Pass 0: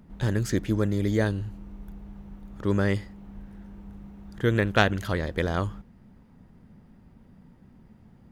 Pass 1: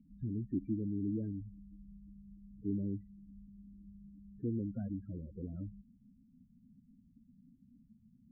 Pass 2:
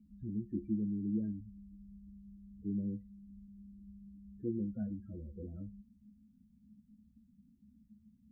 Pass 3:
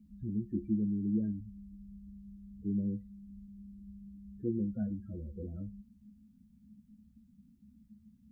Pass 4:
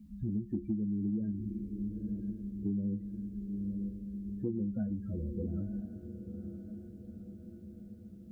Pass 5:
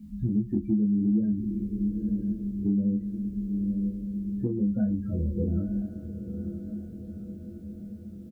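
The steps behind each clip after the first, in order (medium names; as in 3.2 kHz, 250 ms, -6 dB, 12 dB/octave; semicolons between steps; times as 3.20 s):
loudest bins only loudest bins 8; cascade formant filter i; trim -2 dB
feedback comb 70 Hz, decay 0.19 s, harmonics odd, mix 90%; trim +7 dB
peaking EQ 290 Hz -3 dB 0.45 oct; trim +4 dB
echo that smears into a reverb 940 ms, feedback 58%, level -12.5 dB; compression, threshold -37 dBFS, peak gain reduction 10.5 dB; trim +6 dB
doubling 24 ms -3.5 dB; trim +6 dB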